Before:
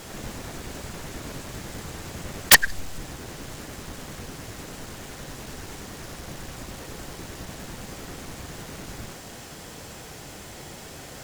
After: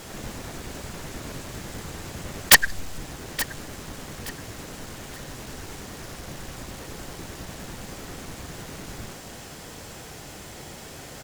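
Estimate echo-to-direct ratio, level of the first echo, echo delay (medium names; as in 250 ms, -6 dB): -15.0 dB, -15.5 dB, 873 ms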